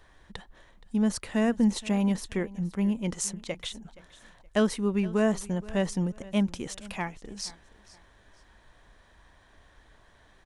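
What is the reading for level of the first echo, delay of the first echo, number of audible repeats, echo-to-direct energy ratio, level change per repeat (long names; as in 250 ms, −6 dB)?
−20.0 dB, 472 ms, 2, −19.5 dB, −10.5 dB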